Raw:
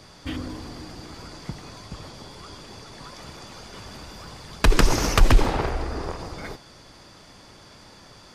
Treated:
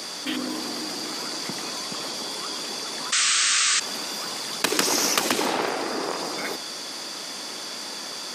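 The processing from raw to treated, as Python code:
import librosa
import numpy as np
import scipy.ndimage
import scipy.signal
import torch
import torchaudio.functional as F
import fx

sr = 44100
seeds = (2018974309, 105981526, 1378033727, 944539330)

y = scipy.signal.sosfilt(scipy.signal.butter(4, 220.0, 'highpass', fs=sr, output='sos'), x)
y = fx.high_shelf(y, sr, hz=3200.0, db=11.0)
y = fx.spec_paint(y, sr, seeds[0], shape='noise', start_s=3.12, length_s=0.68, low_hz=1100.0, high_hz=8700.0, level_db=-18.0)
y = fx.env_flatten(y, sr, amount_pct=50)
y = y * 10.0 ** (-5.0 / 20.0)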